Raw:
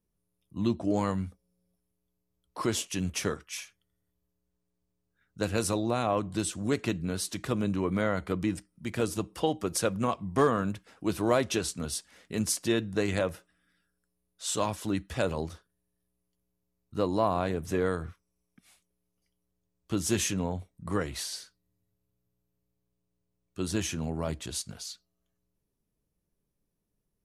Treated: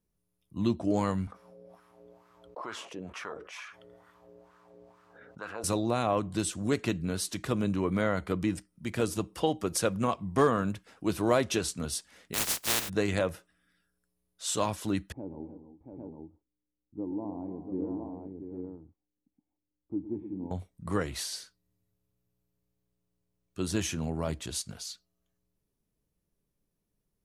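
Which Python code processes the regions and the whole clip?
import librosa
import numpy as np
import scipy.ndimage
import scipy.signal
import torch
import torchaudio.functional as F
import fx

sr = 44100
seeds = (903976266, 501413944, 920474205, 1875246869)

y = fx.chain(x, sr, fx.wah_lfo(hz=2.2, low_hz=470.0, high_hz=1300.0, q=3.2),
    fx.env_flatten(amount_pct=70), at=(1.27, 5.64))
y = fx.spec_flatten(y, sr, power=0.13, at=(12.33, 12.88), fade=0.02)
y = fx.overload_stage(y, sr, gain_db=21.5, at=(12.33, 12.88), fade=0.02)
y = fx.chain(y, sr, fx.formant_cascade(vowel='u'),
    fx.echo_multitap(ms=(111, 213, 298, 302, 685, 804), db=(-13.0, -15.5, -16.5, -13.0, -7.0, -4.0)), at=(15.12, 20.51))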